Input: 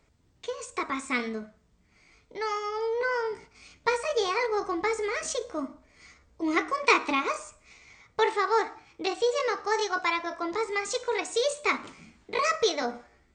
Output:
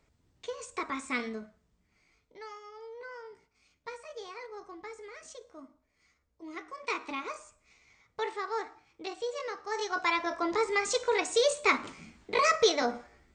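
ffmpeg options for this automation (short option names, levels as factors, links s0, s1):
-af "volume=4.73,afade=t=out:st=1.27:d=1.31:silence=0.237137,afade=t=in:st=6.6:d=0.65:silence=0.446684,afade=t=in:st=9.67:d=0.62:silence=0.298538"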